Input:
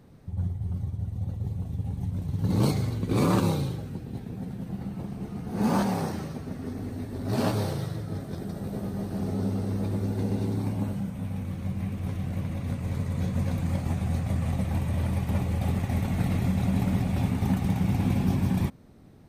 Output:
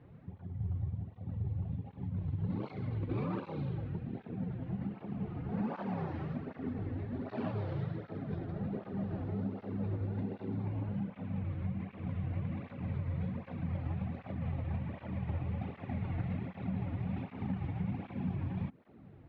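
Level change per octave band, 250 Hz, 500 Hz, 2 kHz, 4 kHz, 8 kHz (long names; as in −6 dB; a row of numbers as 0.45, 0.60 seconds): −9.5 dB, −9.5 dB, −10.5 dB, below −15 dB, below −35 dB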